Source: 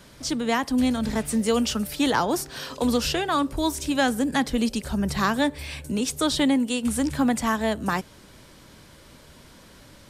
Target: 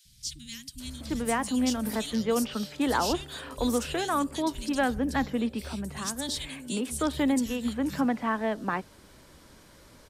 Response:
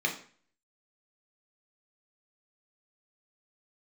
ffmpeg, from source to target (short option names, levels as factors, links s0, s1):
-filter_complex "[0:a]asettb=1/sr,asplit=3[s0][s1][s2];[s0]atrim=end=4.934[s3];[s1]atrim=start=4.93:end=5.49,asetpts=PTS-STARTPTS,afade=t=in:d=0.004:c=qsin,afade=t=out:st=0.556:d=0.004:c=qsin,acrossover=split=160[s4][s5];[s5]acompressor=threshold=0.0282:ratio=6[s6];[s4][s6]amix=inputs=2:normalize=0[s7];[s2]atrim=start=5.486[s8];[s3][s7]acrossfade=d=0.004:c1=hsin:c2=qsin[s9];[s9][s8]acrossfade=d=0.004:c1=qsin:c2=hsin,acrossover=split=150|3000[s10][s11][s12];[s10]adelay=50[s13];[s11]adelay=800[s14];[s13][s14][s12]amix=inputs=3:normalize=0,volume=0.668"